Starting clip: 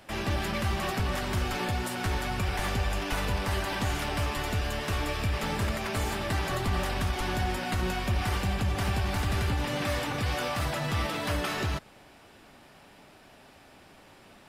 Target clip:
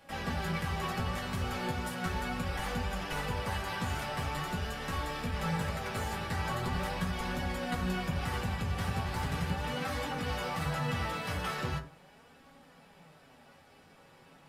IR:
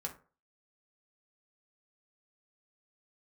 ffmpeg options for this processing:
-filter_complex "[0:a]flanger=delay=3.6:depth=5.9:regen=49:speed=0.4:shape=sinusoidal[a];[1:a]atrim=start_sample=2205[b];[a][b]afir=irnorm=-1:irlink=0"

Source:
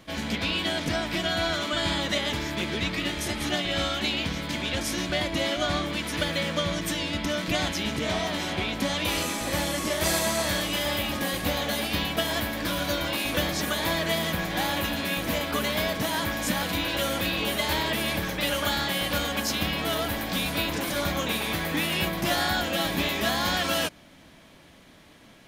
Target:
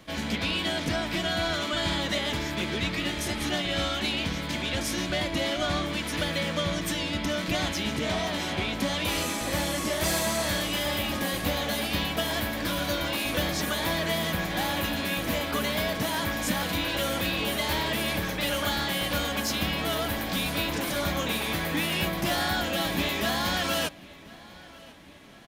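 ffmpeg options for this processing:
-filter_complex "[0:a]acrossover=split=250[a][b];[b]asoftclip=type=tanh:threshold=-20dB[c];[a][c]amix=inputs=2:normalize=0,asplit=2[d][e];[e]adelay=1043,lowpass=f=5k:p=1,volume=-21.5dB,asplit=2[f][g];[g]adelay=1043,lowpass=f=5k:p=1,volume=0.54,asplit=2[h][i];[i]adelay=1043,lowpass=f=5k:p=1,volume=0.54,asplit=2[j][k];[k]adelay=1043,lowpass=f=5k:p=1,volume=0.54[l];[d][f][h][j][l]amix=inputs=5:normalize=0"

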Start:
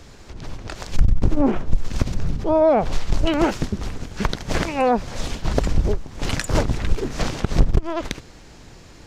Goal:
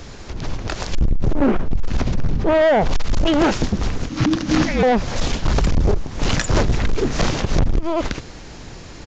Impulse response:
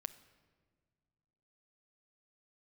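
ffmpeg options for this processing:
-filter_complex "[0:a]asoftclip=type=tanh:threshold=-16.5dB,asettb=1/sr,asplit=3[a][b][c];[a]atrim=end=1.314[d];[b]atrim=start=1.31:end=2.81,asetpts=PTS-STARTPTS,afade=t=in:d=0.004:c=qsin,afade=t=out:st=1.496:d=0.004:c=qsin,highshelf=f=4.7k:g=-9.5[e];[c]atrim=start=2.806[f];[d][e]acrossfade=d=0.004:c1=hsin:c2=qsin[g];[g][f]acrossfade=d=0.004:c1=qsin:c2=hsin,asoftclip=type=hard:threshold=-19.5dB,aresample=16000,aresample=44100,asettb=1/sr,asplit=3[h][i][j];[h]atrim=end=4.094[k];[i]atrim=start=4.09:end=4.83,asetpts=PTS-STARTPTS,afade=t=in:d=0.004:c=qsin,afade=t=out:st=0.736:d=0.004:c=qsin,afreqshift=-330[l];[j]atrim=start=4.826[m];[k][l]acrossfade=d=0.004:c1=hsin:c2=qsin[n];[n][m]acrossfade=d=0.004:c1=qsin:c2=hsin,volume=7.5dB"

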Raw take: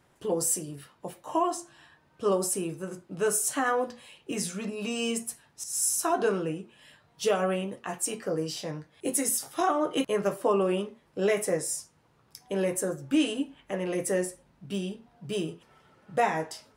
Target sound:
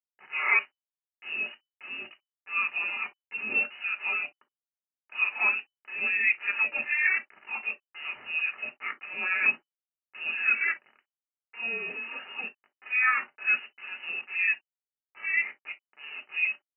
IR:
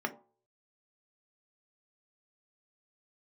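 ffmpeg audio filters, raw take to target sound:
-filter_complex "[0:a]areverse,aresample=11025,aeval=exprs='val(0)*gte(abs(val(0)),0.01)':c=same,aresample=44100,lowpass=f=2.6k:t=q:w=0.5098,lowpass=f=2.6k:t=q:w=0.6013,lowpass=f=2.6k:t=q:w=0.9,lowpass=f=2.6k:t=q:w=2.563,afreqshift=-3000,lowshelf=f=440:g=-7.5[a];[1:a]atrim=start_sample=2205,atrim=end_sample=3087[b];[a][b]afir=irnorm=-1:irlink=0,volume=-3dB"

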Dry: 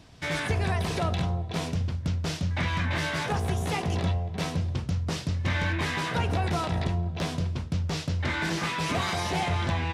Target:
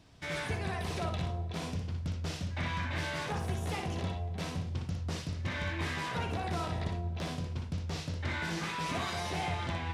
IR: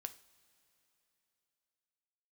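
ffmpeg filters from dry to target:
-filter_complex "[0:a]asplit=2[a][b];[1:a]atrim=start_sample=2205,adelay=60[c];[b][c]afir=irnorm=-1:irlink=0,volume=-1dB[d];[a][d]amix=inputs=2:normalize=0,volume=-8dB"

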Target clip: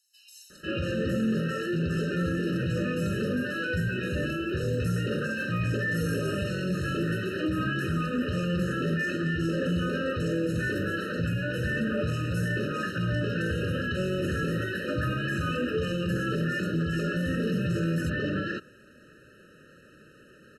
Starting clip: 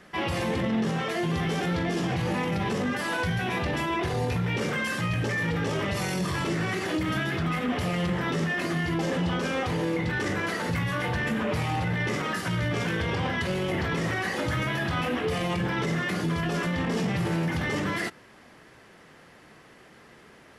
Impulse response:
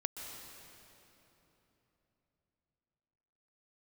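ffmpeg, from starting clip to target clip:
-filter_complex "[0:a]acrossover=split=4700[a][b];[a]adelay=500[c];[c][b]amix=inputs=2:normalize=0,afftfilt=real='re*eq(mod(floor(b*sr/1024/620),2),0)':imag='im*eq(mod(floor(b*sr/1024/620),2),0)':win_size=1024:overlap=0.75"

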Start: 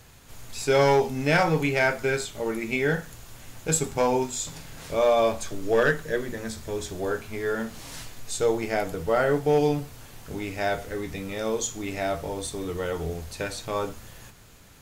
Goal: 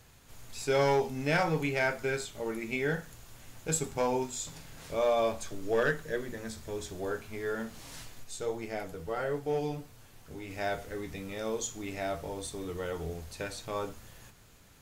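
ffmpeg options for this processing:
-filter_complex "[0:a]asplit=3[a][b][c];[a]afade=t=out:st=8.23:d=0.02[d];[b]flanger=delay=9:depth=3.6:regen=-43:speed=1.5:shape=sinusoidal,afade=t=in:st=8.23:d=0.02,afade=t=out:st=10.49:d=0.02[e];[c]afade=t=in:st=10.49:d=0.02[f];[d][e][f]amix=inputs=3:normalize=0,volume=-6.5dB"

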